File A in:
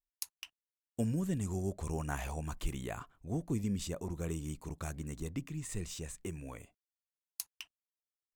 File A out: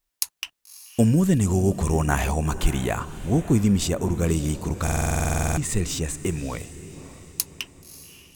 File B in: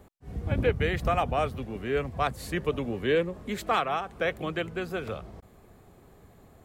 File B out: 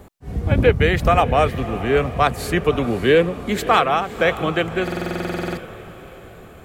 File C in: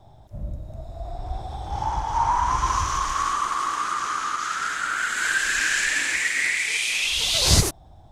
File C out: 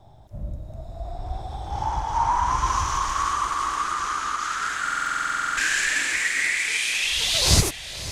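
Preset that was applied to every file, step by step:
echo that smears into a reverb 584 ms, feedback 48%, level -14 dB; buffer glitch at 4.83 s, samples 2048, times 15; peak normalisation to -3 dBFS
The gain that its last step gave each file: +15.0 dB, +10.5 dB, -0.5 dB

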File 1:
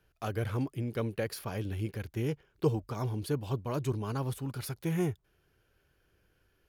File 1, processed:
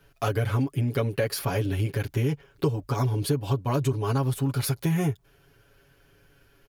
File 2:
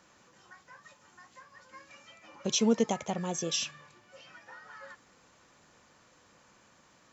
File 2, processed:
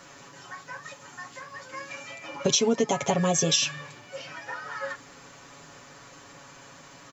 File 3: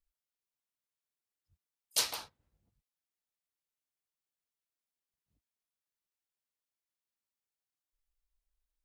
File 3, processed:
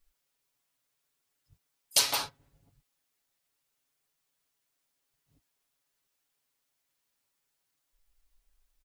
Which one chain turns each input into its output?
comb 7.2 ms, depth 85%; compression 6:1, threshold -31 dBFS; normalise loudness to -27 LUFS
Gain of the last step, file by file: +9.5 dB, +11.0 dB, +10.0 dB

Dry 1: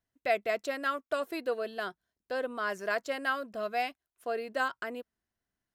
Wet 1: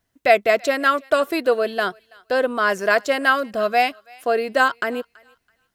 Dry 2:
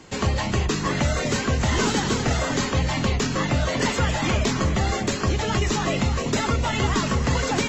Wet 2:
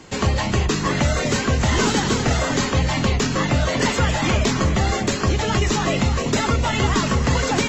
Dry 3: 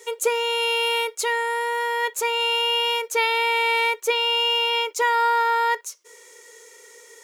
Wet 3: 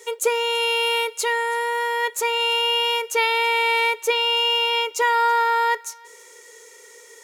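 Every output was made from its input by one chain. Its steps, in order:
thinning echo 330 ms, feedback 27%, high-pass 1.1 kHz, level -23 dB; normalise loudness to -20 LUFS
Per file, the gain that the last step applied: +13.5 dB, +3.0 dB, +1.0 dB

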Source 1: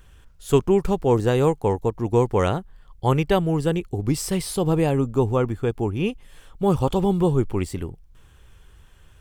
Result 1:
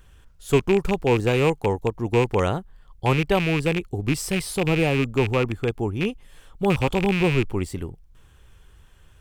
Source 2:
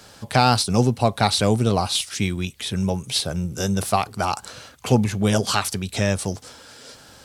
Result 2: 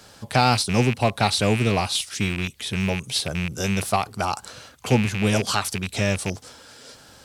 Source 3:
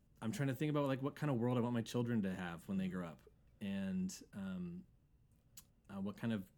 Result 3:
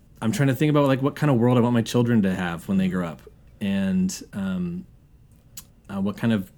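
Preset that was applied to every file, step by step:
rattle on loud lows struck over -23 dBFS, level -15 dBFS; normalise loudness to -23 LUFS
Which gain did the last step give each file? -1.5 dB, -1.5 dB, +18.0 dB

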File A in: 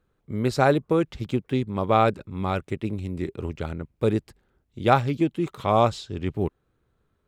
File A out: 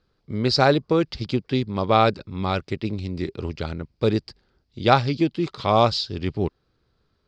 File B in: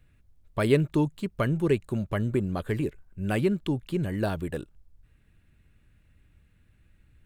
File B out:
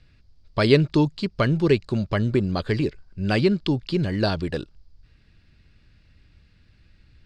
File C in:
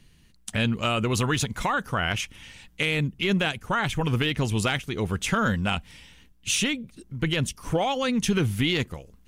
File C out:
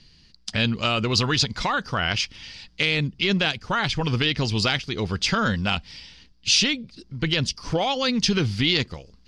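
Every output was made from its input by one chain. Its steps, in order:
resonant low-pass 4.8 kHz, resonance Q 7.6; normalise loudness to -23 LUFS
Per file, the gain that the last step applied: +1.5 dB, +5.0 dB, +0.5 dB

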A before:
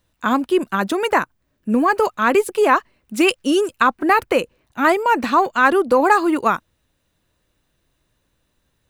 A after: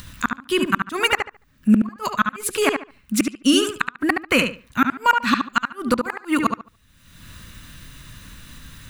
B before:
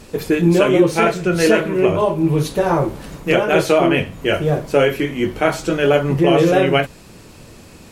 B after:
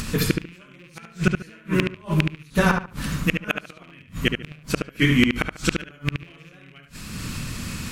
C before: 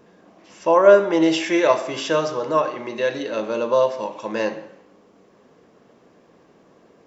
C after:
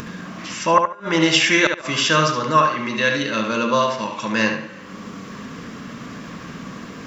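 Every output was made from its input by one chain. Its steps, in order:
rattle on loud lows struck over -18 dBFS, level -8 dBFS; high-order bell 540 Hz -13 dB; upward compressor, threshold -32 dBFS; inverted gate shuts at -12 dBFS, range -36 dB; filtered feedback delay 72 ms, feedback 23%, low-pass 3.6 kHz, level -5 dB; peak normalisation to -1.5 dBFS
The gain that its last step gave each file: +7.5 dB, +7.0 dB, +9.5 dB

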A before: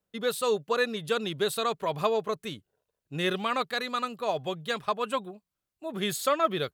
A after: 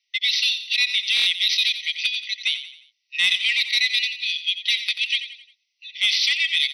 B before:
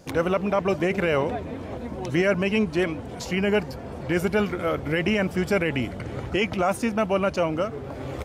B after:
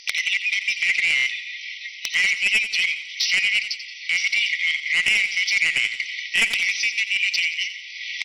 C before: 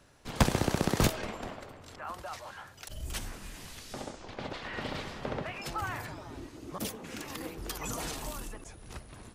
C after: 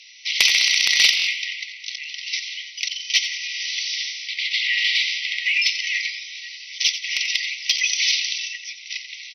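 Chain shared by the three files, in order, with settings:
tracing distortion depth 0.046 ms; FFT band-pass 1.9–6.1 kHz; in parallel at -1.5 dB: compressor with a negative ratio -39 dBFS, ratio -1; on the sum: sine folder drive 7 dB, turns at -12.5 dBFS; on a send: feedback delay 88 ms, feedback 43%, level -11 dB; on the sum: buffer glitch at 1.15 s, samples 1024, times 4; MP3 80 kbps 48 kHz; normalise loudness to -20 LUFS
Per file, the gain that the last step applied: +3.0 dB, +1.0 dB, +8.0 dB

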